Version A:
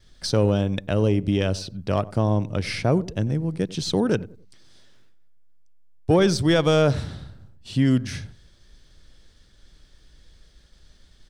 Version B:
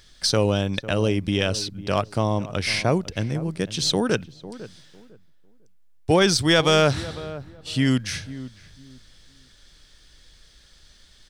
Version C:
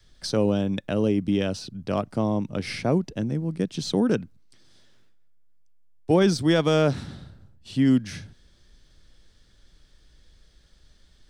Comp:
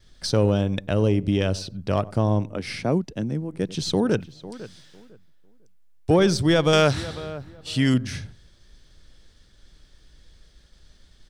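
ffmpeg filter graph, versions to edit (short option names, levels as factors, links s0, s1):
-filter_complex "[1:a]asplit=2[s0][s1];[0:a]asplit=4[s2][s3][s4][s5];[s2]atrim=end=2.64[s6];[2:a]atrim=start=2.4:end=3.65[s7];[s3]atrim=start=3.41:end=4.202[s8];[s0]atrim=start=4.198:end=6.102[s9];[s4]atrim=start=6.098:end=6.732[s10];[s1]atrim=start=6.728:end=7.942[s11];[s5]atrim=start=7.938[s12];[s6][s7]acrossfade=d=0.24:c1=tri:c2=tri[s13];[s13][s8]acrossfade=d=0.24:c1=tri:c2=tri[s14];[s14][s9]acrossfade=d=0.004:c1=hsin:c2=hsin[s15];[s15][s10]acrossfade=d=0.004:c1=hsin:c2=hsin[s16];[s16][s11]acrossfade=d=0.004:c1=hsin:c2=hsin[s17];[s17][s12]acrossfade=d=0.004:c1=hsin:c2=hsin"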